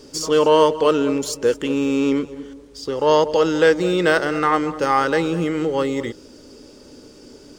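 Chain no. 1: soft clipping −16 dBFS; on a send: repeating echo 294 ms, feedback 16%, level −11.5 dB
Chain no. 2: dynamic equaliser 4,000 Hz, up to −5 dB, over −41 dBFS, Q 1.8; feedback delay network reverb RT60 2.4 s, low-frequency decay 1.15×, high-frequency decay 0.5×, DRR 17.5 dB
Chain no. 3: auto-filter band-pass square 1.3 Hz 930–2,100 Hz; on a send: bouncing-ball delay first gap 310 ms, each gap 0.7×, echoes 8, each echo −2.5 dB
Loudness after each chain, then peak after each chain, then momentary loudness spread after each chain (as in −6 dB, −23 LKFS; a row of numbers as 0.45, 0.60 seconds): −22.0, −18.0, −25.0 LKFS; −13.5, −2.0, −9.0 dBFS; 11, 12, 14 LU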